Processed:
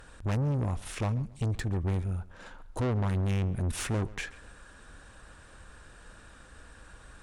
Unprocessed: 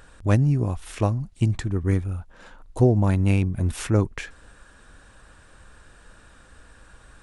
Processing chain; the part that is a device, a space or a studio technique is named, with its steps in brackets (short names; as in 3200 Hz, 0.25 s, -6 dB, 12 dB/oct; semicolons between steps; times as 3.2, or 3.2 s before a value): rockabilly slapback (tube stage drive 26 dB, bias 0.3; tape echo 0.137 s, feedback 31%, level -17.5 dB, low-pass 3600 Hz)